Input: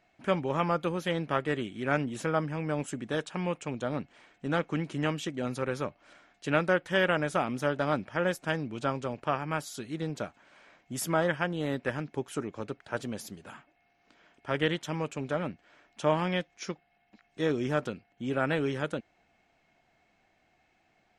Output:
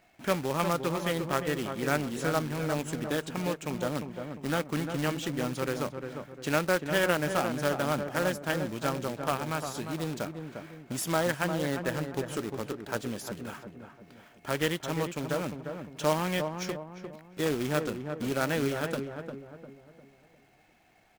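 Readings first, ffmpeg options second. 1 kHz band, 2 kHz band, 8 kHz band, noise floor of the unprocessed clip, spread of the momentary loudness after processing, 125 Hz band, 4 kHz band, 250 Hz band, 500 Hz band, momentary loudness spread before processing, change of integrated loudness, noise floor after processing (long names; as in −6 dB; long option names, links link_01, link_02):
0.0 dB, 0.0 dB, +5.5 dB, −70 dBFS, 12 LU, +0.5 dB, +2.0 dB, +0.5 dB, +0.5 dB, 11 LU, +0.5 dB, −61 dBFS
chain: -filter_complex "[0:a]asplit=2[link_01][link_02];[link_02]acompressor=threshold=-41dB:ratio=8,volume=1dB[link_03];[link_01][link_03]amix=inputs=2:normalize=0,acrusher=bits=2:mode=log:mix=0:aa=0.000001,asplit=2[link_04][link_05];[link_05]adelay=351,lowpass=frequency=1200:poles=1,volume=-6dB,asplit=2[link_06][link_07];[link_07]adelay=351,lowpass=frequency=1200:poles=1,volume=0.44,asplit=2[link_08][link_09];[link_09]adelay=351,lowpass=frequency=1200:poles=1,volume=0.44,asplit=2[link_10][link_11];[link_11]adelay=351,lowpass=frequency=1200:poles=1,volume=0.44,asplit=2[link_12][link_13];[link_13]adelay=351,lowpass=frequency=1200:poles=1,volume=0.44[link_14];[link_04][link_06][link_08][link_10][link_12][link_14]amix=inputs=6:normalize=0,volume=-2.5dB"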